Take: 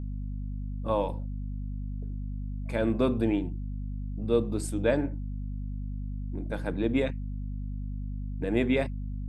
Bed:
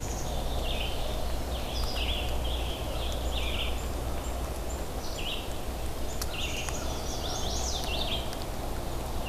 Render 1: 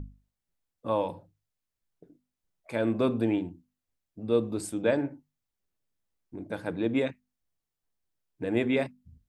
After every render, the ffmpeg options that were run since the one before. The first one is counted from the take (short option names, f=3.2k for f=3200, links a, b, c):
-af "bandreject=f=50:t=h:w=6,bandreject=f=100:t=h:w=6,bandreject=f=150:t=h:w=6,bandreject=f=200:t=h:w=6,bandreject=f=250:t=h:w=6"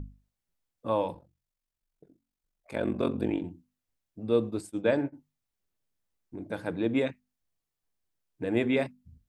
-filter_complex "[0:a]asettb=1/sr,asplit=3[a][b][c];[a]atrim=end=1.134[d];[b]atrim=start=1.13:end=3.44,asetpts=PTS-STARTPTS,afade=t=in:d=0.004:c=qsin,afade=t=out:st=2.306:d=0.004:c=qsin,aeval=exprs='val(0)*sin(2*PI*23*n/s)':c=same[e];[c]atrim=start=3.436[f];[d][e]acrossfade=d=0.004:c1=hsin:c2=qsin[g];[g][f]acrossfade=d=0.004:c1=qsin:c2=hsin,asplit=3[h][i][j];[h]afade=t=out:st=4.49:d=0.02[k];[i]agate=range=-33dB:threshold=-31dB:ratio=3:release=100:detection=peak,afade=t=in:st=4.49:d=0.02,afade=t=out:st=5.12:d=0.02[l];[j]afade=t=in:st=5.12:d=0.02[m];[k][l][m]amix=inputs=3:normalize=0"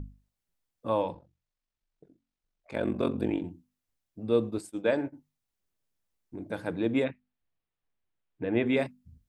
-filter_complex "[0:a]asettb=1/sr,asplit=3[a][b][c];[a]atrim=end=1.024[d];[b]atrim=start=1.02:end=2.75,asetpts=PTS-STARTPTS,afade=t=in:d=0.004:c=qsin,afade=t=out:st=1.726:d=0.004:c=qsin,lowpass=5.6k[e];[c]atrim=start=2.746[f];[d][e]acrossfade=d=0.004:c1=hsin:c2=qsin[g];[g][f]acrossfade=d=0.004:c1=qsin:c2=hsin,asettb=1/sr,asplit=3[h][i][j];[h]atrim=end=4.584[k];[i]atrim=start=4.58:end=5.07,asetpts=PTS-STARTPTS,afade=t=in:d=0.004:c=qsin,afade=t=out:st=0.486:d=0.004:c=qsin,equalizer=f=71:w=0.43:g=-8[l];[j]atrim=start=5.066[m];[k][l]acrossfade=d=0.004:c1=hsin:c2=qsin[n];[n][m]acrossfade=d=0.004:c1=qsin:c2=hsin,asettb=1/sr,asplit=3[o][p][q];[o]atrim=end=7.044[r];[p]atrim=start=7.04:end=8.66,asetpts=PTS-STARTPTS,afade=t=in:d=0.004:c=qsin,afade=t=out:st=1.616:d=0.004:c=qsin,lowpass=f=3.5k:w=0.5412,lowpass=f=3.5k:w=1.3066[s];[q]atrim=start=8.656[t];[r][s]acrossfade=d=0.004:c1=hsin:c2=qsin[u];[u][t]acrossfade=d=0.004:c1=qsin:c2=hsin"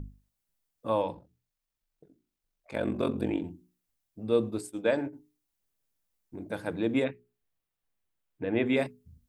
-af "highshelf=f=8.5k:g=7,bandreject=f=60:t=h:w=6,bandreject=f=120:t=h:w=6,bandreject=f=180:t=h:w=6,bandreject=f=240:t=h:w=6,bandreject=f=300:t=h:w=6,bandreject=f=360:t=h:w=6,bandreject=f=420:t=h:w=6"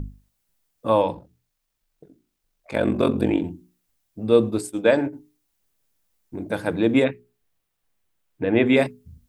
-af "volume=9dB"